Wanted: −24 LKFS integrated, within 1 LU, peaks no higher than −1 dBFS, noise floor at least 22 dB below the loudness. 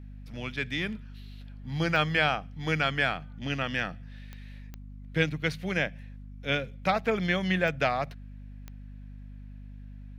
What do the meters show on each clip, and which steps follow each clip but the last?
number of clicks 5; mains hum 50 Hz; hum harmonics up to 250 Hz; level of the hum −41 dBFS; integrated loudness −29.0 LKFS; sample peak −9.5 dBFS; target loudness −24.0 LKFS
→ click removal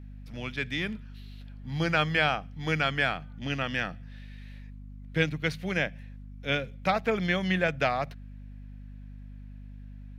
number of clicks 0; mains hum 50 Hz; hum harmonics up to 250 Hz; level of the hum −41 dBFS
→ hum removal 50 Hz, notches 5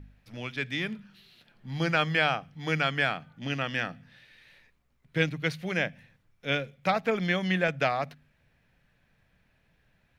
mains hum none found; integrated loudness −29.0 LKFS; sample peak −10.0 dBFS; target loudness −24.0 LKFS
→ level +5 dB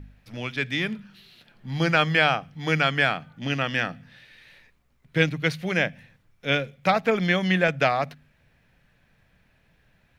integrated loudness −24.0 LKFS; sample peak −5.0 dBFS; background noise floor −64 dBFS

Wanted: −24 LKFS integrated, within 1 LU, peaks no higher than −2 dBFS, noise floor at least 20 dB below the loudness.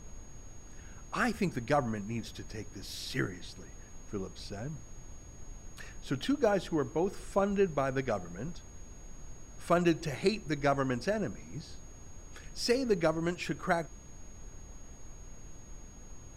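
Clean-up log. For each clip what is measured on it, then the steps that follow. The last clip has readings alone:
interfering tone 6,600 Hz; level of the tone −56 dBFS; background noise floor −50 dBFS; target noise floor −53 dBFS; integrated loudness −33.0 LKFS; sample peak −14.5 dBFS; target loudness −24.0 LKFS
→ notch filter 6,600 Hz, Q 30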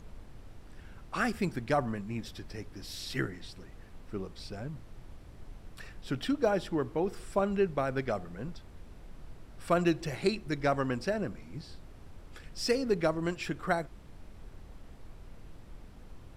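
interfering tone none found; background noise floor −51 dBFS; target noise floor −53 dBFS
→ noise reduction from a noise print 6 dB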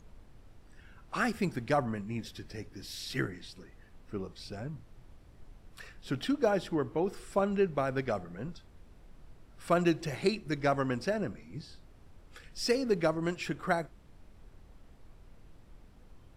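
background noise floor −57 dBFS; integrated loudness −33.0 LKFS; sample peak −14.5 dBFS; target loudness −24.0 LKFS
→ level +9 dB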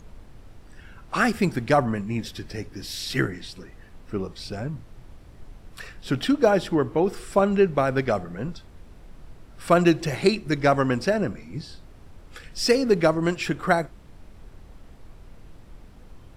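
integrated loudness −24.0 LKFS; sample peak −5.5 dBFS; background noise floor −48 dBFS

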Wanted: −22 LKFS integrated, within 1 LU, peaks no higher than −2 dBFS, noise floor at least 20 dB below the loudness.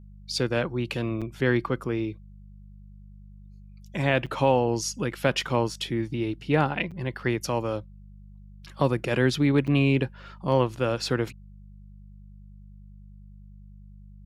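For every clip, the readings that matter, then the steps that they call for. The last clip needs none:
number of dropouts 4; longest dropout 6.6 ms; mains hum 50 Hz; hum harmonics up to 200 Hz; level of the hum −45 dBFS; integrated loudness −26.5 LKFS; sample peak −8.0 dBFS; target loudness −22.0 LKFS
→ repair the gap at 0:01.21/0:04.26/0:06.91/0:09.67, 6.6 ms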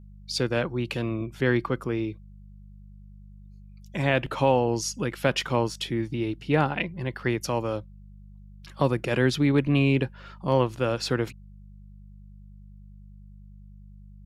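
number of dropouts 0; mains hum 50 Hz; hum harmonics up to 200 Hz; level of the hum −45 dBFS
→ hum removal 50 Hz, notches 4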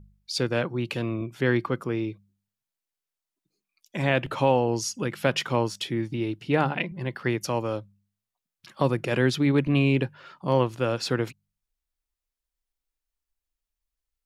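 mains hum none found; integrated loudness −26.5 LKFS; sample peak −8.0 dBFS; target loudness −22.0 LKFS
→ level +4.5 dB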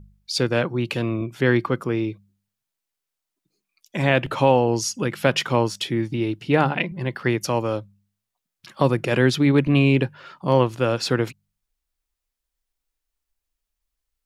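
integrated loudness −22.0 LKFS; sample peak −3.5 dBFS; background noise floor −84 dBFS

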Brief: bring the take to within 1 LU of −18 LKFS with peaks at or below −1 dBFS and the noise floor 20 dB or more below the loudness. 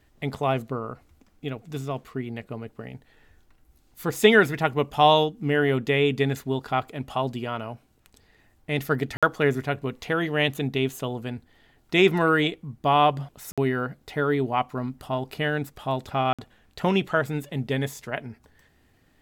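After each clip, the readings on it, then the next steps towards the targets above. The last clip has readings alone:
number of dropouts 3; longest dropout 56 ms; integrated loudness −25.0 LKFS; sample peak −4.0 dBFS; target loudness −18.0 LKFS
→ repair the gap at 0:09.17/0:13.52/0:16.33, 56 ms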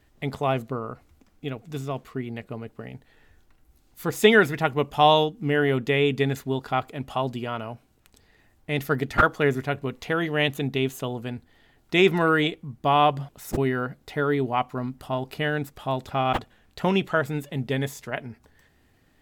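number of dropouts 0; integrated loudness −25.0 LKFS; sample peak −4.0 dBFS; target loudness −18.0 LKFS
→ level +7 dB
brickwall limiter −1 dBFS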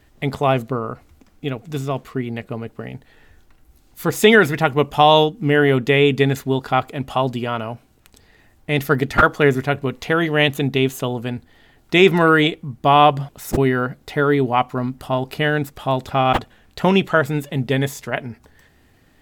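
integrated loudness −18.5 LKFS; sample peak −1.0 dBFS; background noise floor −55 dBFS

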